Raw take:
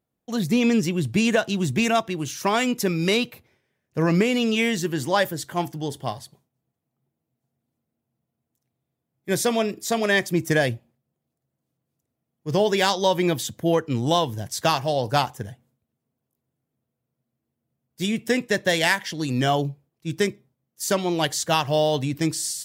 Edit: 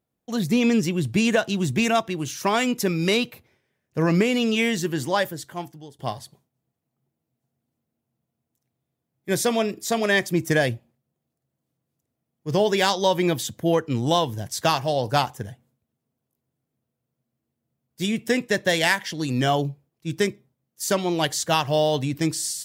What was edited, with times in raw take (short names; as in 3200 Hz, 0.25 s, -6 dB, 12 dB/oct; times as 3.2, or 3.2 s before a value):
4.98–5.99 fade out linear, to -21 dB